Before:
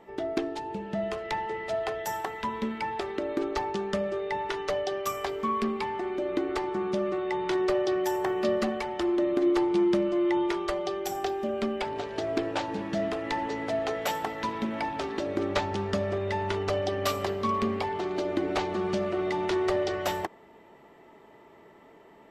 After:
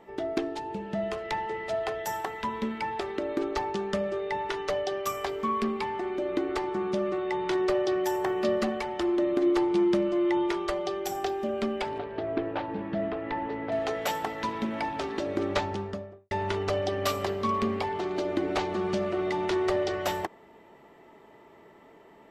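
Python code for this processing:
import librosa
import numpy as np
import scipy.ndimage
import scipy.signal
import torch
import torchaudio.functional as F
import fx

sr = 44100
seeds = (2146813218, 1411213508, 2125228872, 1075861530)

y = fx.air_absorb(x, sr, metres=390.0, at=(11.98, 13.72))
y = fx.studio_fade_out(y, sr, start_s=15.54, length_s=0.77)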